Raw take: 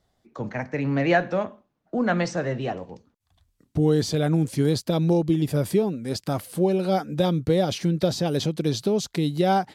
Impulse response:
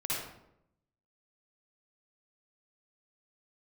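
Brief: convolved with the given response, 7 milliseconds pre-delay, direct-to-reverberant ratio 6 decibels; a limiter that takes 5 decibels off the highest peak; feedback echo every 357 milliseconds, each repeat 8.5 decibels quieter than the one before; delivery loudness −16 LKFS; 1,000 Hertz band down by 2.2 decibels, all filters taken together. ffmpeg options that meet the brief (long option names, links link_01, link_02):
-filter_complex "[0:a]equalizer=frequency=1000:width_type=o:gain=-3.5,alimiter=limit=-14.5dB:level=0:latency=1,aecho=1:1:357|714|1071|1428:0.376|0.143|0.0543|0.0206,asplit=2[link_01][link_02];[1:a]atrim=start_sample=2205,adelay=7[link_03];[link_02][link_03]afir=irnorm=-1:irlink=0,volume=-11.5dB[link_04];[link_01][link_04]amix=inputs=2:normalize=0,volume=8dB"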